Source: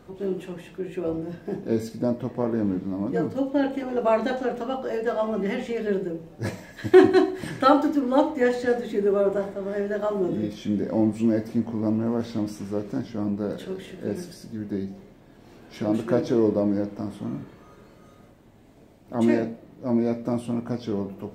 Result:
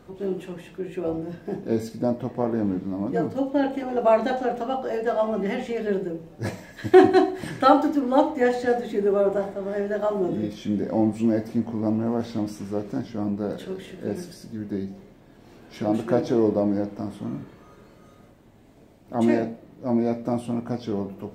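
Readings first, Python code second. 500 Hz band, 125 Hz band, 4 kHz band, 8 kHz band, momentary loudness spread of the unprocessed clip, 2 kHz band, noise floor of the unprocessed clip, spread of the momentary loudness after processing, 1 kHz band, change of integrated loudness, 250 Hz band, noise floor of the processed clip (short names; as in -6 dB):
+0.5 dB, 0.0 dB, 0.0 dB, n/a, 12 LU, 0.0 dB, -52 dBFS, 13 LU, +3.5 dB, +0.5 dB, 0.0 dB, -52 dBFS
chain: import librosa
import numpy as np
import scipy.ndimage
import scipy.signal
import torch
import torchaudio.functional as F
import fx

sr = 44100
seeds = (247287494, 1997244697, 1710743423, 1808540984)

y = fx.dynamic_eq(x, sr, hz=740.0, q=4.9, threshold_db=-45.0, ratio=4.0, max_db=7)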